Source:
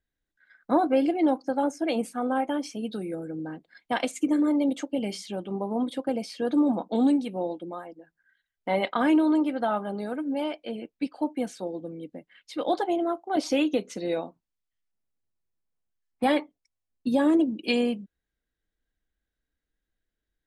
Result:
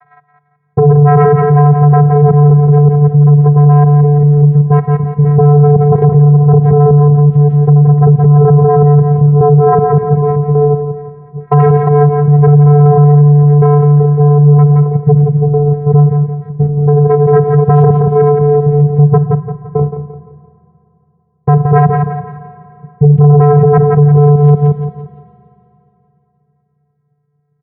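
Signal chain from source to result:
slices reordered back to front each 142 ms, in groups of 4
low-pass filter 1,300 Hz 24 dB per octave
channel vocoder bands 8, square 197 Hz
sine wavefolder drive 14 dB, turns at −10.5 dBFS
repeating echo 127 ms, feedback 37%, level −10 dB
feedback delay network reverb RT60 2.4 s, low-frequency decay 1×, high-frequency decay 0.85×, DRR 15 dB
wrong playback speed 45 rpm record played at 33 rpm
boost into a limiter +14.5 dB
level −1 dB

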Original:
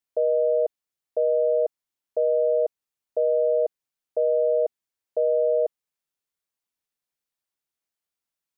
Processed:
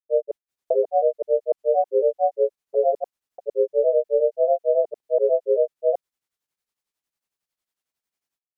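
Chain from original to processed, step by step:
granular cloud 133 ms, grains 11 per second, spray 594 ms, pitch spread up and down by 3 semitones
level +5 dB

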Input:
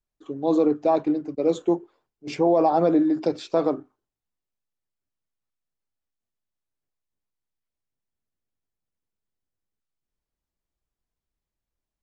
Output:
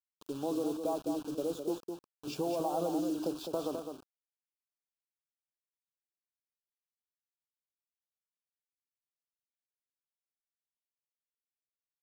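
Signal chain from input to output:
downward compressor 3 to 1, threshold −28 dBFS, peak gain reduction 10 dB
bit reduction 7 bits
Butterworth band-reject 2,000 Hz, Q 1.6
on a send: single-tap delay 208 ms −6.5 dB
on the sum: level −5.5 dB

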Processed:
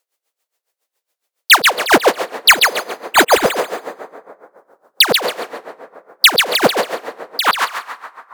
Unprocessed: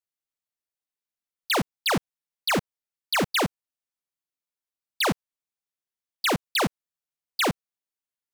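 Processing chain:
high-pass filter sweep 490 Hz → 3,400 Hz, 0:06.92–0:08.21
0:02.51–0:03.42: bad sample-rate conversion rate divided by 8×, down filtered, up hold
on a send: feedback echo with a high-pass in the loop 139 ms, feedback 25%, level −7 dB
on the sum: dense smooth reverb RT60 2.3 s, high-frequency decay 0.45×, pre-delay 115 ms, DRR 17 dB
sine wavefolder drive 19 dB, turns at −1.5 dBFS
tremolo with a sine in dB 7.2 Hz, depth 18 dB
level −1 dB

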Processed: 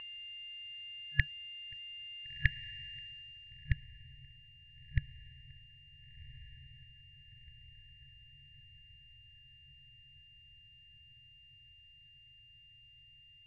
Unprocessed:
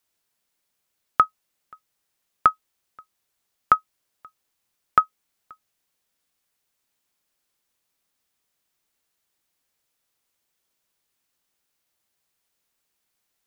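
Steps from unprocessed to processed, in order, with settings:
on a send: feedback delay with all-pass diffusion 1,441 ms, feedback 61%, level −15 dB
on the sum: steady tone 2,800 Hz −45 dBFS
bit-depth reduction 10 bits, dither none
brick-wall band-stop 140–1,700 Hz
low-pass filter sweep 1,100 Hz → 550 Hz, 0:02.98–0:03.87
level +15.5 dB

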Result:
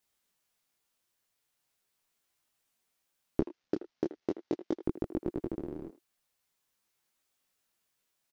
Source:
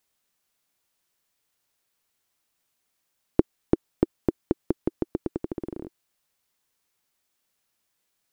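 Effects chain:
0:03.40–0:04.83: variable-slope delta modulation 32 kbit/s
in parallel at −0.5 dB: brickwall limiter −13.5 dBFS, peak gain reduction 10 dB
on the sum: far-end echo of a speakerphone 80 ms, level −13 dB
micro pitch shift up and down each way 14 cents
level −5.5 dB

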